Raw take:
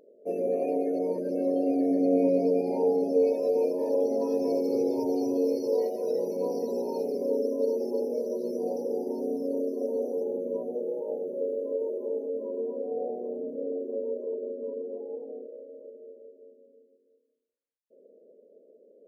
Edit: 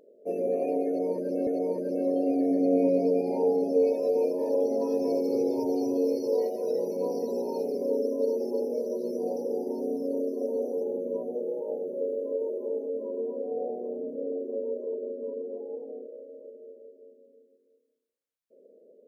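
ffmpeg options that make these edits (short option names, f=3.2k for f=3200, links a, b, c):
-filter_complex "[0:a]asplit=2[a][b];[a]atrim=end=1.472[c];[b]atrim=start=0.868[d];[c][d]acrossfade=d=0.004:c1=hsin:c2=hsin"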